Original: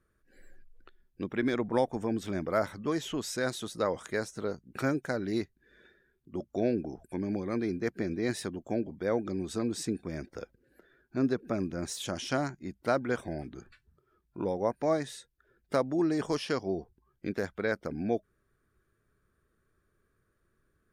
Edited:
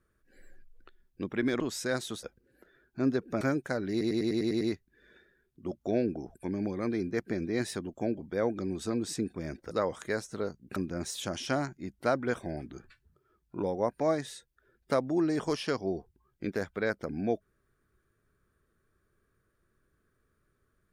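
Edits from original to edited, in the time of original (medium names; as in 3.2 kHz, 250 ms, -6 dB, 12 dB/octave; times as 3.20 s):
1.60–3.12 s: delete
3.75–4.80 s: swap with 10.40–11.58 s
5.30 s: stutter 0.10 s, 8 plays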